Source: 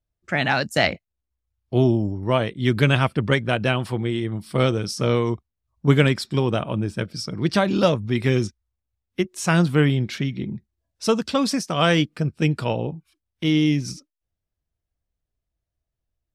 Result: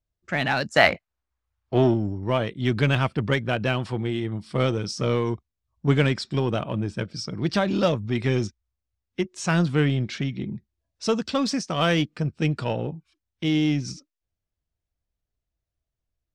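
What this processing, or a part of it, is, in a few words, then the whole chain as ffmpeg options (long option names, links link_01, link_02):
parallel distortion: -filter_complex "[0:a]lowpass=frequency=7700:width=0.5412,lowpass=frequency=7700:width=1.3066,asettb=1/sr,asplit=3[link_01][link_02][link_03];[link_01]atrim=end=0.694[link_04];[link_02]atrim=start=0.69:end=1.94,asetpts=PTS-STARTPTS,afade=type=in:duration=0.004:curve=qsin,afade=type=out:start_time=1.246:duration=0.004:curve=qsin,equalizer=frequency=1200:width_type=o:width=2.2:gain=11.5[link_05];[link_03]atrim=start=1.936[link_06];[link_04][link_05]acrossfade=duration=0.004:curve1=hsin:curve2=qsin[link_07];[link_07][link_06]acrossfade=duration=0.004:curve1=qsin:curve2=hsin,asplit=2[link_08][link_09];[link_09]asoftclip=type=hard:threshold=-20.5dB,volume=-7.5dB[link_10];[link_08][link_10]amix=inputs=2:normalize=0,volume=-5dB"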